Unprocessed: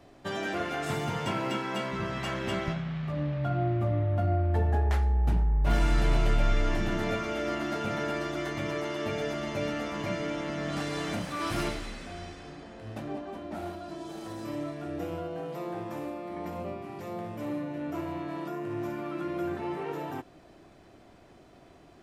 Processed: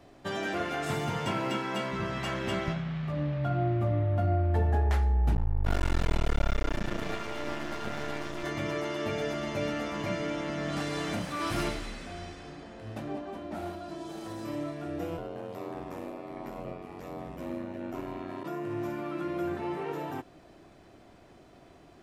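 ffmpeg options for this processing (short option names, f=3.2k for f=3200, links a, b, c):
-filter_complex "[0:a]asettb=1/sr,asplit=3[a][b][c];[a]atrim=end=5.344[d];[b]atrim=start=5.34:end=8.44,asetpts=PTS-STARTPTS,afade=t=in:d=0.004:c=qsin,afade=t=out:st=3.096:d=0.004:c=qsin,aeval=exprs='max(val(0),0)':c=same[e];[c]atrim=start=8.436[f];[d][e]acrossfade=d=0.004:c1=hsin:c2=qsin[g];[g][f]acrossfade=d=0.004:c1=qsin:c2=hsin,asplit=3[h][i][j];[h]afade=t=out:st=15.17:d=0.02[k];[i]aeval=exprs='val(0)*sin(2*PI*45*n/s)':c=same,afade=t=in:st=15.17:d=0.02,afade=t=out:st=18.43:d=0.02[l];[j]afade=t=in:st=18.43:d=0.02[m];[k][l][m]amix=inputs=3:normalize=0"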